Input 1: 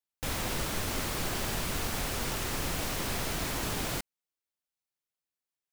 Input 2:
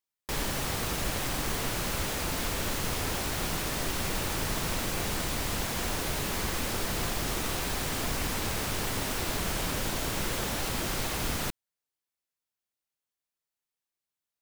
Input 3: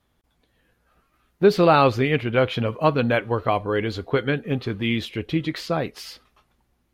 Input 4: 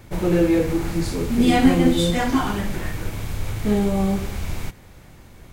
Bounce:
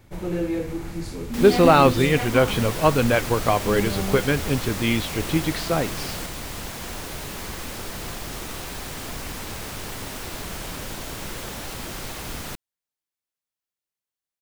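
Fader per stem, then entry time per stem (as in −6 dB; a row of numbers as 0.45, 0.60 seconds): −1.5, −2.0, +1.0, −8.0 decibels; 2.25, 1.05, 0.00, 0.00 seconds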